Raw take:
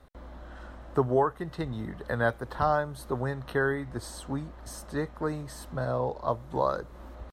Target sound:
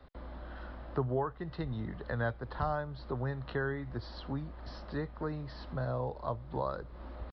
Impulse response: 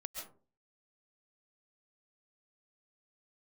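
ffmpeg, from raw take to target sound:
-filter_complex "[0:a]aresample=11025,aresample=44100,acrossover=split=140[link_01][link_02];[link_02]acompressor=threshold=-46dB:ratio=1.5[link_03];[link_01][link_03]amix=inputs=2:normalize=0"

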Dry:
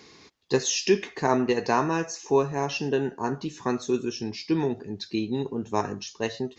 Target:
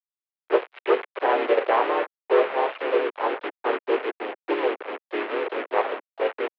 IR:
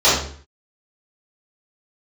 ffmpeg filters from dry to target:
-filter_complex "[0:a]tiltshelf=frequency=1100:gain=8.5,aresample=11025,acrusher=bits=2:mode=log:mix=0:aa=0.000001,aresample=44100,volume=12dB,asoftclip=hard,volume=-12dB,acrusher=bits=4:mix=0:aa=0.000001,highpass=frequency=440:width_type=q:width=0.5412,highpass=frequency=440:width_type=q:width=1.307,lowpass=frequency=2900:width_type=q:width=0.5176,lowpass=frequency=2900:width_type=q:width=0.7071,lowpass=frequency=2900:width_type=q:width=1.932,afreqshift=86,asplit=4[link_01][link_02][link_03][link_04];[link_02]asetrate=33038,aresample=44100,atempo=1.33484,volume=-7dB[link_05];[link_03]asetrate=37084,aresample=44100,atempo=1.18921,volume=-3dB[link_06];[link_04]asetrate=55563,aresample=44100,atempo=0.793701,volume=-15dB[link_07];[link_01][link_05][link_06][link_07]amix=inputs=4:normalize=0"

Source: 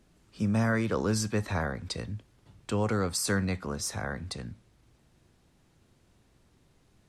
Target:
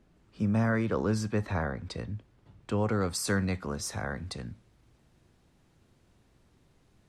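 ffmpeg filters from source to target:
ffmpeg -i in.wav -af "asetnsamples=nb_out_samples=441:pad=0,asendcmd='3.01 highshelf g -3.5',highshelf=frequency=3900:gain=-12" out.wav

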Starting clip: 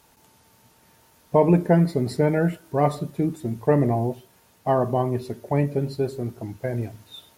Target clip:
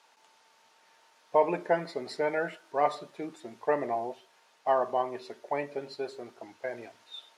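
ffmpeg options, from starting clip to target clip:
ffmpeg -i in.wav -af "highpass=660,lowpass=5400,volume=-1dB" out.wav

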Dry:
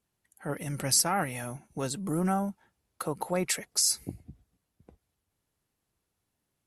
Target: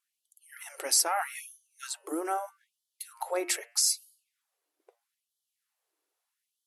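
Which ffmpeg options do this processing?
ffmpeg -i in.wav -af "bandreject=frequency=117.1:width_type=h:width=4,bandreject=frequency=234.2:width_type=h:width=4,bandreject=frequency=351.3:width_type=h:width=4,bandreject=frequency=468.4:width_type=h:width=4,bandreject=frequency=585.5:width_type=h:width=4,bandreject=frequency=702.6:width_type=h:width=4,bandreject=frequency=819.7:width_type=h:width=4,bandreject=frequency=936.8:width_type=h:width=4,bandreject=frequency=1053.9:width_type=h:width=4,bandreject=frequency=1171:width_type=h:width=4,bandreject=frequency=1288.1:width_type=h:width=4,bandreject=frequency=1405.2:width_type=h:width=4,bandreject=frequency=1522.3:width_type=h:width=4,bandreject=frequency=1639.4:width_type=h:width=4,bandreject=frequency=1756.5:width_type=h:width=4,bandreject=frequency=1873.6:width_type=h:width=4,bandreject=frequency=1990.7:width_type=h:width=4,bandreject=frequency=2107.8:width_type=h:width=4,bandreject=frequency=2224.9:width_type=h:width=4,bandreject=frequency=2342:width_type=h:width=4,bandreject=frequency=2459.1:width_type=h:width=4,bandreject=frequency=2576.2:width_type=h:width=4,bandreject=frequency=2693.3:width_type=h:width=4,bandreject=frequency=2810.4:width_type=h:width=4,bandreject=frequency=2927.5:width_type=h:width=4,bandreject=frequency=3044.6:width_type=h:width=4,bandreject=frequency=3161.7:width_type=h:width=4,afftfilt=real='re*gte(b*sr/1024,270*pow(3000/270,0.5+0.5*sin(2*PI*0.79*pts/sr)))':imag='im*gte(b*sr/1024,270*pow(3000/270,0.5+0.5*sin(2*PI*0.79*pts/sr)))':win_size=1024:overlap=0.75" out.wav

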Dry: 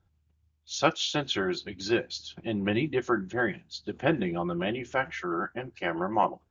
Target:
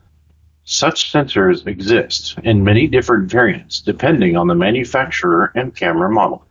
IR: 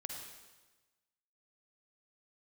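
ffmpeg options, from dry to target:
-filter_complex "[0:a]asettb=1/sr,asplit=3[link_01][link_02][link_03];[link_01]atrim=end=1.024[link_04];[link_02]atrim=start=1.02:end=1.88,asetpts=PTS-STARTPTS,afade=type=in:duration=0.004:curve=qsin,afade=type=out:start_time=0.856:duration=0.004:curve=qsin,lowpass=1800[link_05];[link_03]atrim=start=1.876[link_06];[link_04][link_05]acrossfade=duration=0.004:curve1=hsin:curve2=qsin[link_07];[link_07][link_06]acrossfade=duration=0.004:curve1=qsin:curve2=hsin,asettb=1/sr,asplit=3[link_08][link_09][link_10];[link_08]atrim=end=2.444[link_11];[link_09]atrim=start=2.44:end=3.1,asetpts=PTS-STARTPTS,afade=type=in:duration=0.004:curve=qsin,afade=type=out:start_time=0.656:duration=0.004:curve=qsin,lowshelf=frequency=120:width_type=q:width=3:gain=6.5[link_12];[link_10]atrim=start=3.096[link_13];[link_11][link_12]acrossfade=duration=0.004:curve1=hsin:curve2=qsin[link_14];[link_14][link_13]acrossfade=duration=0.004:curve1=qsin:curve2=hsin,alimiter=level_in=19dB:limit=-1dB:release=50:level=0:latency=1,volume=-1dB"

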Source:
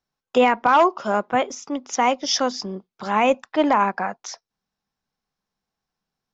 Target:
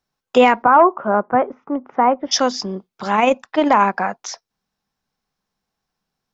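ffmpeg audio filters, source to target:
ffmpeg -i in.wav -filter_complex "[0:a]asplit=3[link_01][link_02][link_03];[link_01]afade=type=out:start_time=0.62:duration=0.02[link_04];[link_02]lowpass=frequency=1600:width=0.5412,lowpass=frequency=1600:width=1.3066,afade=type=in:start_time=0.62:duration=0.02,afade=type=out:start_time=2.31:duration=0.02[link_05];[link_03]afade=type=in:start_time=2.31:duration=0.02[link_06];[link_04][link_05][link_06]amix=inputs=3:normalize=0,asettb=1/sr,asplit=3[link_07][link_08][link_09];[link_07]atrim=end=3.154[link_10];[link_08]atrim=start=3.15:end=3.71,asetpts=PTS-STARTPTS,afade=type=in:duration=0.004:curve=qsin,afade=type=out:start_time=0.556:duration=0.004:curve=qsin,tremolo=f=23:d=0.4[link_11];[link_09]atrim=start=3.706[link_12];[link_10][link_11]acrossfade=duration=0.004:curve1=hsin:curve2=qsin[link_13];[link_13][link_12]acrossfade=duration=0.004:curve1=qsin:curve2=hsin,volume=4.5dB" out.wav

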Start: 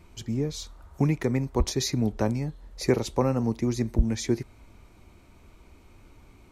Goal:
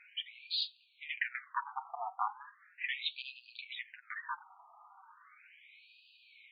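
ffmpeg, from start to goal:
ffmpeg -i in.wav -af "asoftclip=type=tanh:threshold=-25.5dB,flanger=delay=4.8:depth=3.6:regen=34:speed=0.42:shape=sinusoidal,afftfilt=real='re*between(b*sr/1024,940*pow(3500/940,0.5+0.5*sin(2*PI*0.37*pts/sr))/1.41,940*pow(3500/940,0.5+0.5*sin(2*PI*0.37*pts/sr))*1.41)':imag='im*between(b*sr/1024,940*pow(3500/940,0.5+0.5*sin(2*PI*0.37*pts/sr))/1.41,940*pow(3500/940,0.5+0.5*sin(2*PI*0.37*pts/sr))*1.41)':win_size=1024:overlap=0.75,volume=12dB" out.wav

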